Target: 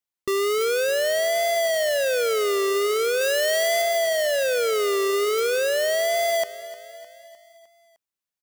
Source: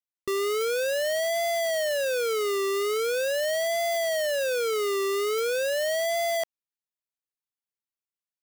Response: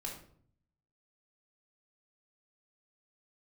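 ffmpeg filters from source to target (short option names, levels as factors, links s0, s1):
-filter_complex "[0:a]asettb=1/sr,asplit=3[s0][s1][s2];[s0]atrim=end=3.214[s3];[s1]atrim=start=3.21:end=3.82,asetpts=PTS-STARTPTS,afade=t=in:d=0.004:c=qsin,afade=t=out:st=0.606:d=0.004:c=qsin,tiltshelf=f=640:g=-3.5[s4];[s2]atrim=start=3.816[s5];[s3][s4]acrossfade=d=0.004:c1=hsin:c2=qsin[s6];[s6][s5]acrossfade=d=0.004:c1=qsin:c2=hsin,asplit=2[s7][s8];[s8]aecho=0:1:305|610|915|1220|1525:0.15|0.0853|0.0486|0.0277|0.0158[s9];[s7][s9]amix=inputs=2:normalize=0,volume=1.58"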